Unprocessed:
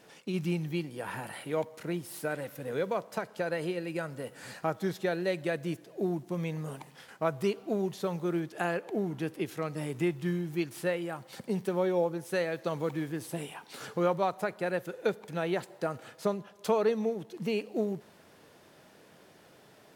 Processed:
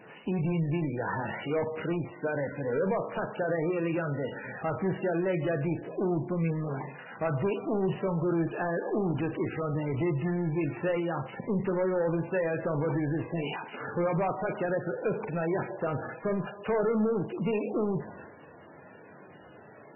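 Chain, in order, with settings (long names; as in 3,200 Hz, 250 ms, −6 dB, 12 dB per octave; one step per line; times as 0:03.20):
transient designer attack +2 dB, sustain +7 dB
in parallel at +1 dB: brickwall limiter −25 dBFS, peak gain reduction 11.5 dB
on the sum: soft clipping −23 dBFS, distortion −12 dB
high-shelf EQ 5,600 Hz −7 dB
on a send: flutter between parallel walls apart 7.2 metres, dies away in 0.24 s
on the sum: MP3 8 kbit/s 16,000 Hz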